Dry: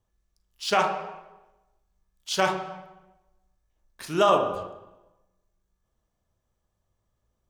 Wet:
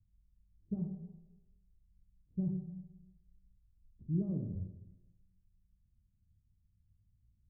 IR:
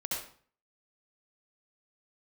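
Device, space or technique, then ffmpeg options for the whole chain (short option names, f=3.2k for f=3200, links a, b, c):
the neighbour's flat through the wall: -af "lowpass=f=200:w=0.5412,lowpass=f=200:w=1.3066,equalizer=f=87:t=o:w=0.77:g=5.5,volume=3.5dB"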